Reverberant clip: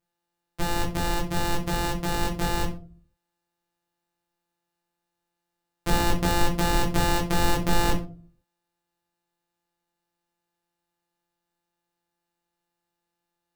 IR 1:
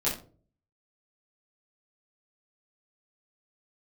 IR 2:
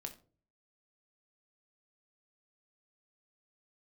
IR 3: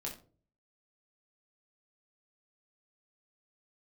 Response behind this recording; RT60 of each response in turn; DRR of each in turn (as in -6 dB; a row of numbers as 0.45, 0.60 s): 3; 0.40, 0.40, 0.40 s; -8.5, 5.0, -2.0 dB